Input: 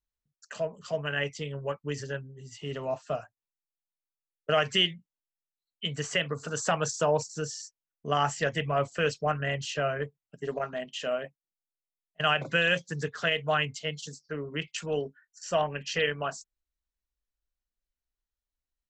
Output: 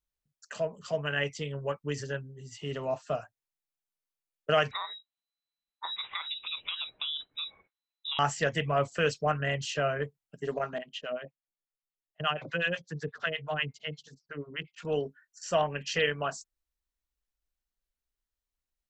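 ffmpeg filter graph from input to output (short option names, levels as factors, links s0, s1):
-filter_complex "[0:a]asettb=1/sr,asplit=3[s0][s1][s2];[s0]atrim=end=4.714[s3];[s1]atrim=start=4.71:end=8.19,asetpts=PTS-STARTPTS,afade=t=in:d=0.004:c=qsin,afade=t=out:st=3.476:d=0.004:c=qsin,acompressor=threshold=0.0316:ratio=12:attack=3.2:release=140:knee=1:detection=peak,lowpass=f=3400:t=q:w=0.5098,lowpass=f=3400:t=q:w=0.6013,lowpass=f=3400:t=q:w=0.9,lowpass=f=3400:t=q:w=2.563,afreqshift=-4000[s4];[s2]atrim=start=8.186[s5];[s3][s4]acrossfade=d=0.004:c1=hsin:c2=qsin[s6];[s6][s5]acrossfade=d=0.004:c1=qsin:c2=hsin,asettb=1/sr,asplit=3[s7][s8][s9];[s7]atrim=end=10.784[s10];[s8]atrim=start=10.78:end=14.85,asetpts=PTS-STARTPTS,afade=t=in:d=0.004:c=qsin,afade=t=out:st=4.066:d=0.004:c=qsin,acrossover=split=690[s11][s12];[s11]aeval=exprs='val(0)*(1-1/2+1/2*cos(2*PI*8.3*n/s))':c=same[s13];[s12]aeval=exprs='val(0)*(1-1/2-1/2*cos(2*PI*8.3*n/s))':c=same[s14];[s13][s14]amix=inputs=2:normalize=0,lowpass=4400[s15];[s9]atrim=start=14.846[s16];[s10][s15]acrossfade=d=0.004:c1=hsin:c2=qsin[s17];[s17][s16]acrossfade=d=0.004:c1=qsin:c2=hsin"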